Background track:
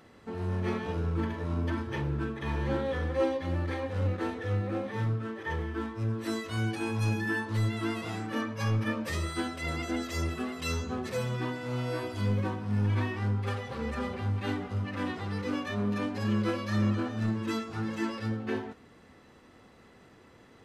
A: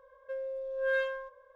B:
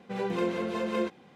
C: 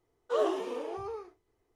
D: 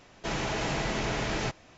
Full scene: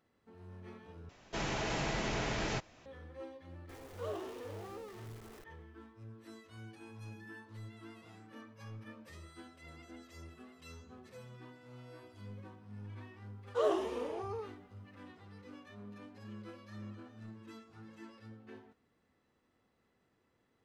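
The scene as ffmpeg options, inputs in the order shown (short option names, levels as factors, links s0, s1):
-filter_complex "[3:a]asplit=2[s0][s1];[0:a]volume=0.1[s2];[s0]aeval=exprs='val(0)+0.5*0.0188*sgn(val(0))':c=same[s3];[s2]asplit=2[s4][s5];[s4]atrim=end=1.094[s6];[4:a]atrim=end=1.77,asetpts=PTS-STARTPTS,volume=0.562[s7];[s5]atrim=start=2.856[s8];[s3]atrim=end=1.75,asetpts=PTS-STARTPTS,volume=0.2,afade=t=in:d=0.004:c=hsin,afade=t=out:st=1.746:d=0.004:c=hsin,adelay=162729S[s9];[s1]atrim=end=1.75,asetpts=PTS-STARTPTS,volume=0.75,afade=t=in:d=0.004:c=hsin,afade=t=out:st=1.746:d=0.004:c=hsin,adelay=13250[s10];[s6][s7]acrossfade=d=0.004:c1=hsin:c2=hsin[s11];[s11][s8]acrossfade=d=0.004:c1=hsin:c2=hsin[s12];[s12][s9][s10]amix=inputs=3:normalize=0"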